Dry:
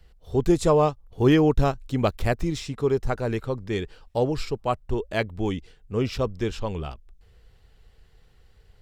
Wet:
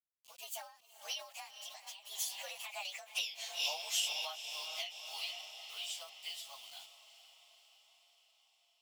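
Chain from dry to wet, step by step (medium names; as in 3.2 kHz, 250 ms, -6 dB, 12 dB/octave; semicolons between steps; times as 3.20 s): frequency axis rescaled in octaves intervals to 117%; Doppler pass-by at 3.27 s, 48 m/s, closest 5.3 m; Chebyshev high-pass 690 Hz, order 5; peaking EQ 3.9 kHz -6.5 dB 0.21 oct; companded quantiser 8-bit; on a send: echo that smears into a reverb 458 ms, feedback 60%, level -16 dB; on the sum: compression 2.5:1, threshold -57 dBFS, peak gain reduction 12 dB; in parallel at -0.5 dB: peak limiter -52.5 dBFS, peak gain reduction 10.5 dB; on the sum: resonant high shelf 2.1 kHz +11 dB, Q 3; endings held to a fixed fall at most 110 dB/s; trim +9.5 dB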